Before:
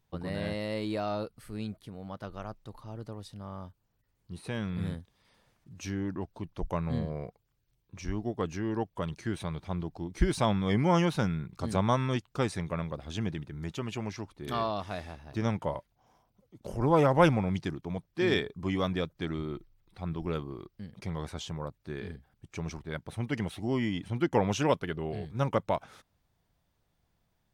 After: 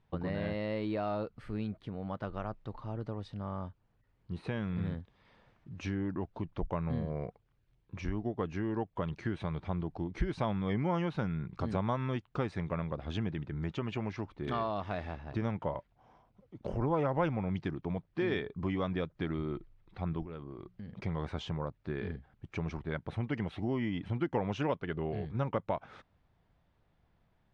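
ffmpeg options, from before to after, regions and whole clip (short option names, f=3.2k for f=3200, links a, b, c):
-filter_complex "[0:a]asettb=1/sr,asplit=3[a][b][c];[a]atrim=end=20.234[d];[b]atrim=start=20.23:end=20.95,asetpts=PTS-STARTPTS,afade=t=in:d=0.004:c=qsin,afade=t=out:st=0.716:d=0.004:c=qsin,bandreject=f=60:t=h:w=6,bandreject=f=120:t=h:w=6,bandreject=f=180:t=h:w=6,acompressor=threshold=-44dB:ratio=6:attack=3.2:release=140:knee=1:detection=peak[e];[c]atrim=start=20.946[f];[d][e]acrossfade=d=0.004:c1=hsin:c2=qsin[g];[g][f]acrossfade=d=0.004:c1=qsin:c2=hsin,lowpass=2.7k,acompressor=threshold=-37dB:ratio=2.5,volume=4dB"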